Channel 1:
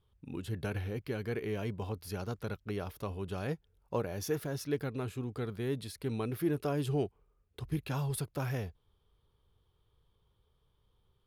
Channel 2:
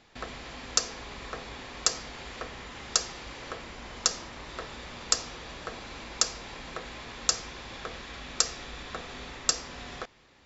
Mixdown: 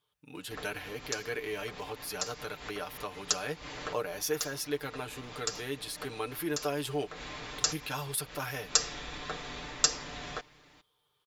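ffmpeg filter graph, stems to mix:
-filter_complex "[0:a]highpass=f=1200:p=1,dynaudnorm=f=150:g=3:m=1.58,volume=1.33,asplit=2[s0][s1];[1:a]adelay=350,volume=0.891[s2];[s1]apad=whole_len=476610[s3];[s2][s3]sidechaincompress=threshold=0.00355:ratio=8:attack=36:release=155[s4];[s0][s4]amix=inputs=2:normalize=0,aecho=1:1:6.7:0.65"

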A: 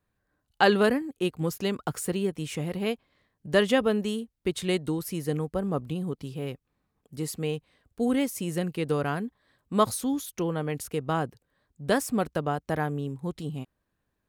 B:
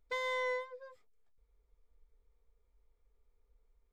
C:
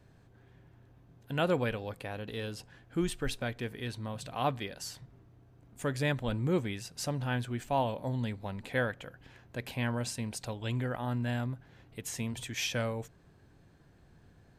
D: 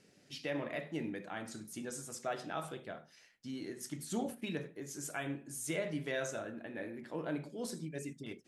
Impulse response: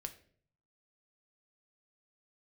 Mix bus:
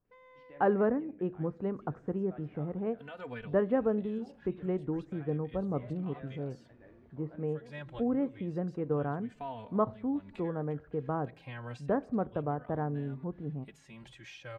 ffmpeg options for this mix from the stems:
-filter_complex "[0:a]lowpass=1200,volume=0.422,asplit=3[s0][s1][s2];[s1]volume=0.596[s3];[1:a]asoftclip=type=tanh:threshold=0.0188,volume=0.141[s4];[2:a]crystalizer=i=8:c=0,acompressor=threshold=0.0178:ratio=4,asplit=2[s5][s6];[s6]adelay=3.2,afreqshift=-0.32[s7];[s5][s7]amix=inputs=2:normalize=1,adelay=1700,volume=1[s8];[3:a]adelay=50,volume=0.188[s9];[s2]apad=whole_len=718316[s10];[s8][s10]sidechaincompress=threshold=0.00447:ratio=4:attack=7.6:release=257[s11];[4:a]atrim=start_sample=2205[s12];[s3][s12]afir=irnorm=-1:irlink=0[s13];[s0][s4][s11][s9][s13]amix=inputs=5:normalize=0,lowpass=1700"

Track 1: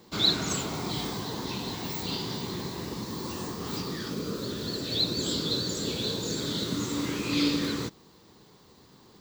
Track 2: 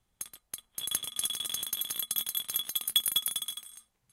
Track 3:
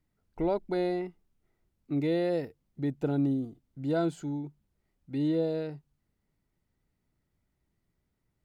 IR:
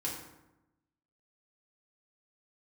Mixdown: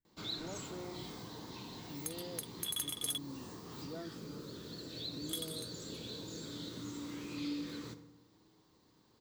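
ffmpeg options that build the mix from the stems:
-filter_complex "[0:a]adelay=50,volume=0.158,asplit=2[s0][s1];[s1]volume=0.422[s2];[1:a]adelay=1850,volume=1.33,asplit=3[s3][s4][s5];[s3]atrim=end=3.18,asetpts=PTS-STARTPTS,afade=t=out:st=3.176:d=0.004:c=hsin[s6];[s4]atrim=start=3.18:end=5.29,asetpts=PTS-STARTPTS,volume=0[s7];[s5]atrim=start=5.29,asetpts=PTS-STARTPTS,afade=t=in:d=0.004:c=hsin[s8];[s6][s7][s8]concat=n=3:v=0:a=1[s9];[2:a]volume=0.15[s10];[3:a]atrim=start_sample=2205[s11];[s2][s11]afir=irnorm=-1:irlink=0[s12];[s0][s9][s10][s12]amix=inputs=4:normalize=0,asoftclip=type=tanh:threshold=0.075,acompressor=threshold=0.00708:ratio=1.5"

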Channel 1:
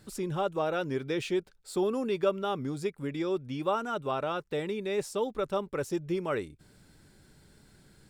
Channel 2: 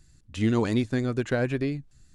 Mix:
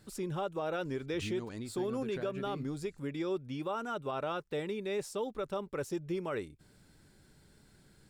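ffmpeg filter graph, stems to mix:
-filter_complex "[0:a]volume=0.668[s0];[1:a]acompressor=threshold=0.0251:ratio=10,adelay=850,volume=0.501[s1];[s0][s1]amix=inputs=2:normalize=0,alimiter=level_in=1.33:limit=0.0631:level=0:latency=1:release=57,volume=0.75"

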